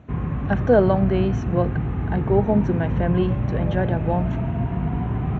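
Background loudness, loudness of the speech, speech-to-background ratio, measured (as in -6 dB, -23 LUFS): -25.0 LUFS, -23.0 LUFS, 2.0 dB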